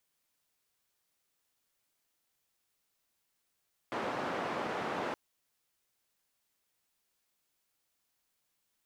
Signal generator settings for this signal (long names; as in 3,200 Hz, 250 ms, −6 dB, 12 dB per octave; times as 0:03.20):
band-limited noise 210–1,100 Hz, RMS −36 dBFS 1.22 s